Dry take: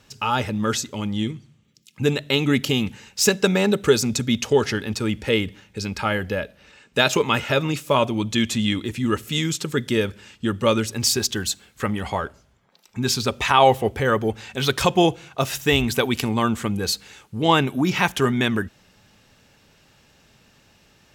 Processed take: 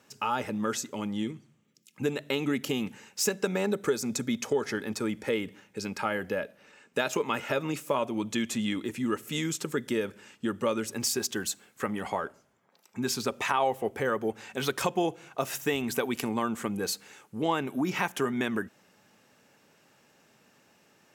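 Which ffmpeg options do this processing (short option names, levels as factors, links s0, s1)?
-filter_complex "[0:a]asettb=1/sr,asplit=3[s0][s1][s2];[s0]atrim=end=3.664[s3];[s1]atrim=start=3.66:end=5.35,asetpts=PTS-STARTPTS,afade=t=in:d=0.004:c=qsin,afade=t=out:st=1.686:d=0.004:c=qsin,bandreject=f=2800:w=11[s4];[s2]atrim=start=5.346[s5];[s3][s4]acrossfade=d=0.004:c1=hsin:c2=qsin[s6];[s6][s5]acrossfade=d=0.004:c1=qsin:c2=hsin,highpass=210,equalizer=f=3800:w=1.1:g=-7.5,acompressor=threshold=0.0708:ratio=2.5,volume=0.708"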